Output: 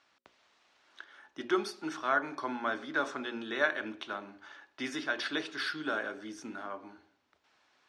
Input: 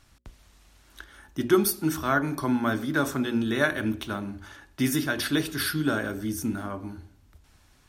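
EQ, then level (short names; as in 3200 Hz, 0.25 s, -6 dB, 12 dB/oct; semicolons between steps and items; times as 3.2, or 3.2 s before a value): BPF 490–5600 Hz; air absorption 72 m; -3.0 dB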